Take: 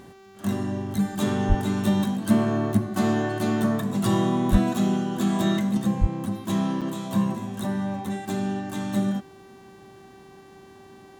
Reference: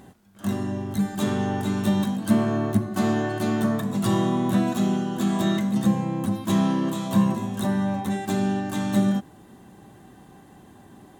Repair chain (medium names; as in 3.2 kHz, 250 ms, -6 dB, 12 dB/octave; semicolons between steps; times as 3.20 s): de-hum 387.4 Hz, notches 19; de-plosive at 1.48/4.51/6.00 s; interpolate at 6.81 s, 6.2 ms; trim 0 dB, from 5.77 s +3.5 dB